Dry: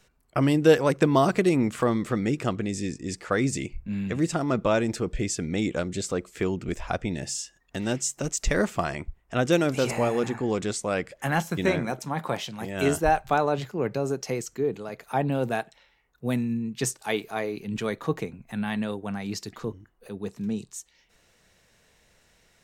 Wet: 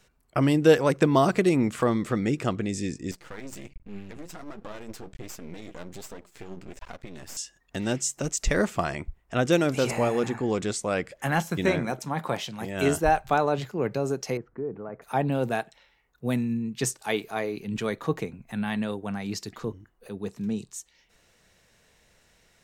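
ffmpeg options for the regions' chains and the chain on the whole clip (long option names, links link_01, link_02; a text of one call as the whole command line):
ffmpeg -i in.wav -filter_complex "[0:a]asettb=1/sr,asplit=3[link_01][link_02][link_03];[link_01]atrim=end=3.114[link_04];[link_02]atrim=start=3.11:end=7.37,asetpts=PTS-STARTPTS,afade=type=in:duration=0.004:curve=qsin,afade=type=out:start_time=4.256:duration=0.004:curve=qsin,acompressor=threshold=-28dB:ratio=6:attack=3.2:release=140:knee=1:detection=peak,flanger=delay=3.4:depth=8.2:regen=45:speed=1.3:shape=triangular,aeval=exprs='max(val(0),0)':channel_layout=same[link_05];[link_03]atrim=start=7.366[link_06];[link_04][link_05]acrossfade=duration=0.004:curve1=hsin:curve2=qsin[link_07];[link_07][link_06]acrossfade=duration=0.004:curve1=qsin:curve2=hsin,asettb=1/sr,asplit=3[link_08][link_09][link_10];[link_08]atrim=end=14.374[link_11];[link_09]atrim=start=14.37:end=15.02,asetpts=PTS-STARTPTS,afade=type=in:duration=0.004:curve=qsin,afade=type=out:start_time=0.646:duration=0.004:curve=qsin,lowpass=frequency=1500:width=0.5412,lowpass=frequency=1500:width=1.3066,acompressor=threshold=-32dB:ratio=2:attack=3.2:release=140:knee=1:detection=peak[link_12];[link_10]atrim=start=15.016[link_13];[link_11][link_12]acrossfade=duration=0.004:curve1=hsin:curve2=qsin[link_14];[link_14][link_13]acrossfade=duration=0.004:curve1=qsin:curve2=hsin" out.wav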